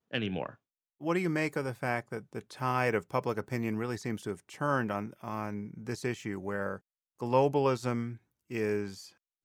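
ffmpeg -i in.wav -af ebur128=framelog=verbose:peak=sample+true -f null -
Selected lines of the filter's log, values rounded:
Integrated loudness:
  I:         -33.2 LUFS
  Threshold: -43.5 LUFS
Loudness range:
  LRA:         2.6 LU
  Threshold: -53.5 LUFS
  LRA low:   -35.3 LUFS
  LRA high:  -32.6 LUFS
Sample peak:
  Peak:      -12.0 dBFS
True peak:
  Peak:      -12.0 dBFS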